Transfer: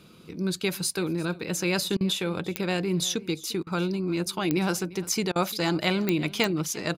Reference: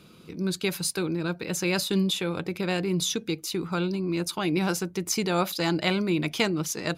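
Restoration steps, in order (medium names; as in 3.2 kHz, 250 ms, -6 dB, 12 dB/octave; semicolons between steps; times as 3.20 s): de-click; interpolate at 1.97/3.63/5.32 s, 36 ms; inverse comb 348 ms -20 dB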